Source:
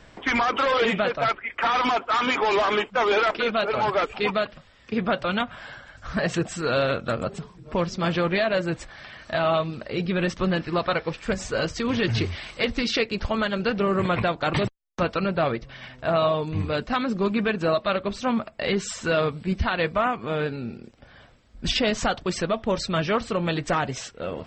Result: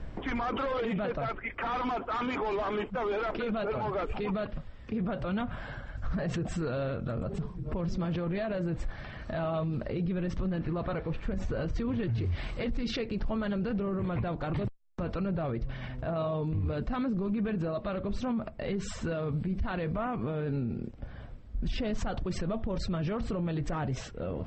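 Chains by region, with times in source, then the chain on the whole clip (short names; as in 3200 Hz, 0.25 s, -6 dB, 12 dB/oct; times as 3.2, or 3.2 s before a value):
10.58–12.16 air absorption 93 m + notch 5100 Hz, Q 13
whole clip: tilt -3.5 dB/oct; limiter -23.5 dBFS; gain -1.5 dB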